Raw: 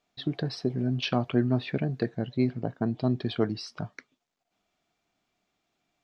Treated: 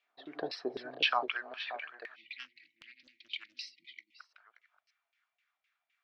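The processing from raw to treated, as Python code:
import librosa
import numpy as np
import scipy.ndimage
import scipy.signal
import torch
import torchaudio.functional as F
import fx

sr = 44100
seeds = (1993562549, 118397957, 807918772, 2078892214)

y = fx.reverse_delay(x, sr, ms=333, wet_db=-11.5)
y = fx.filter_sweep_highpass(y, sr, from_hz=310.0, to_hz=1700.0, start_s=0.62, end_s=1.47, q=1.2)
y = y + 10.0 ** (-12.5 / 20.0) * np.pad(y, (int(578 * sr / 1000.0), 0))[:len(y)]
y = fx.filter_lfo_bandpass(y, sr, shape='saw_down', hz=3.9, low_hz=490.0, high_hz=2600.0, q=2.3)
y = fx.dynamic_eq(y, sr, hz=3900.0, q=1.4, threshold_db=-56.0, ratio=4.0, max_db=4)
y = fx.spec_erase(y, sr, start_s=2.15, length_s=2.05, low_hz=360.0, high_hz=1900.0)
y = fx.peak_eq(y, sr, hz=110.0, db=fx.line((0.73, 6.0), (1.24, 12.0)), octaves=0.85, at=(0.73, 1.24), fade=0.02)
y = fx.doppler_dist(y, sr, depth_ms=0.7, at=(2.3, 3.64))
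y = y * librosa.db_to_amplitude(5.5)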